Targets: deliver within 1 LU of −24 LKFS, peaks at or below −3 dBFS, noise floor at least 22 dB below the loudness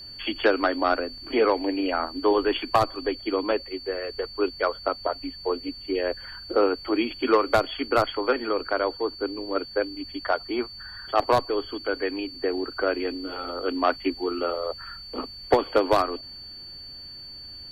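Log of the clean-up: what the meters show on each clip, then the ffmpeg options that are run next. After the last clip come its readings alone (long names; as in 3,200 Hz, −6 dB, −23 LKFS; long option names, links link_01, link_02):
interfering tone 4,500 Hz; level of the tone −39 dBFS; integrated loudness −26.0 LKFS; sample peak −9.5 dBFS; target loudness −24.0 LKFS
→ -af "bandreject=frequency=4500:width=30"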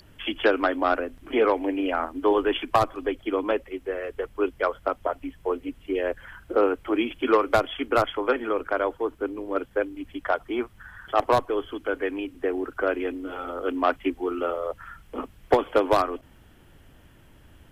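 interfering tone none found; integrated loudness −26.0 LKFS; sample peak −10.0 dBFS; target loudness −24.0 LKFS
→ -af "volume=2dB"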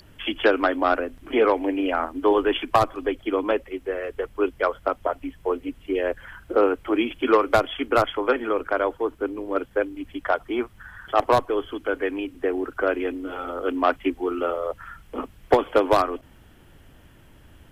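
integrated loudness −24.0 LKFS; sample peak −8.0 dBFS; background noise floor −52 dBFS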